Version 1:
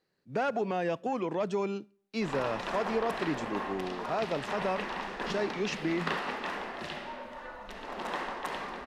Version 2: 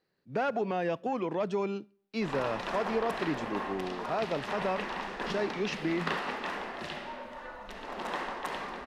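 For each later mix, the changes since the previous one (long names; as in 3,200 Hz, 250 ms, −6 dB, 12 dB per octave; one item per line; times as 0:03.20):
speech: add parametric band 7,600 Hz −6.5 dB 0.77 octaves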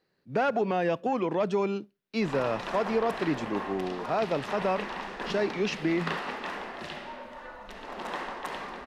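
speech +4.5 dB
reverb: off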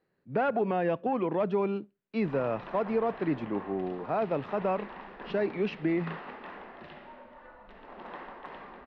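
background −6.0 dB
master: add high-frequency loss of the air 380 metres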